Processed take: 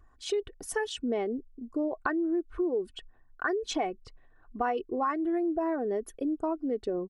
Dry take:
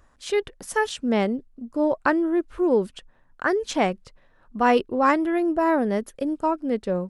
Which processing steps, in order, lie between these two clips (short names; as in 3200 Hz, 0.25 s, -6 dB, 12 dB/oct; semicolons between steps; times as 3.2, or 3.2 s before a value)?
formant sharpening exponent 1.5; comb 2.7 ms, depth 58%; compressor 6:1, threshold -23 dBFS, peak gain reduction 11 dB; gain -3.5 dB